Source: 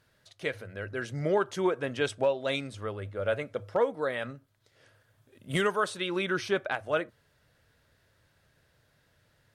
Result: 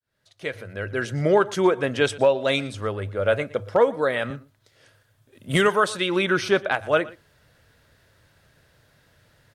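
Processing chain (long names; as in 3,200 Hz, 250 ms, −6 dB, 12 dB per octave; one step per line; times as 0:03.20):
fade in at the beginning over 0.91 s
single-tap delay 118 ms −20 dB
0:04.30–0:05.49: multiband upward and downward expander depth 40%
level +8 dB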